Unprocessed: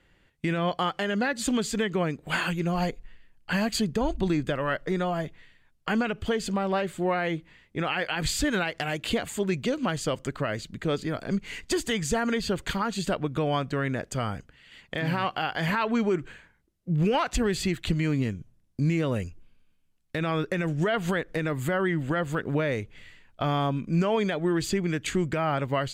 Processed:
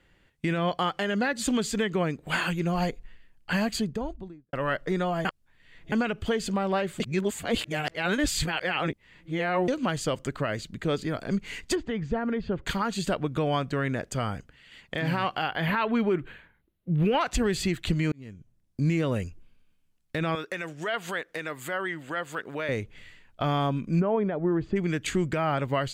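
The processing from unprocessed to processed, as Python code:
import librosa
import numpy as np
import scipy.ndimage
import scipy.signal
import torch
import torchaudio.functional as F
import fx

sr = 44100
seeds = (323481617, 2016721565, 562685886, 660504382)

y = fx.studio_fade_out(x, sr, start_s=3.54, length_s=0.99)
y = fx.spacing_loss(y, sr, db_at_10k=43, at=(11.74, 12.65), fade=0.02)
y = fx.band_shelf(y, sr, hz=6600.0, db=-13.5, octaves=1.1, at=(15.48, 17.21))
y = fx.highpass(y, sr, hz=860.0, slope=6, at=(20.35, 22.69))
y = fx.lowpass(y, sr, hz=1100.0, slope=12, at=(23.99, 24.75), fade=0.02)
y = fx.edit(y, sr, fx.reverse_span(start_s=5.25, length_s=0.67),
    fx.reverse_span(start_s=7.0, length_s=2.68),
    fx.fade_in_span(start_s=18.12, length_s=0.75), tone=tone)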